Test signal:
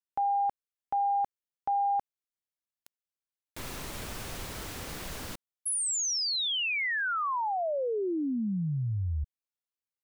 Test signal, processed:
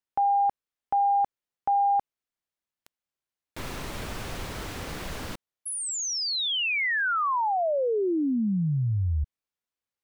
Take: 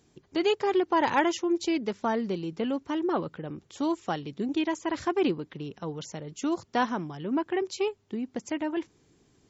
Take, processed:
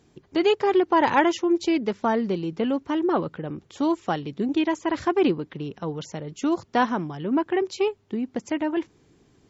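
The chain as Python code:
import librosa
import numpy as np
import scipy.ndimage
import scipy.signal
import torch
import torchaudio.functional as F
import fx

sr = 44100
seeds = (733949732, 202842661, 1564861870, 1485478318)

y = fx.high_shelf(x, sr, hz=5500.0, db=-9.0)
y = F.gain(torch.from_numpy(y), 5.0).numpy()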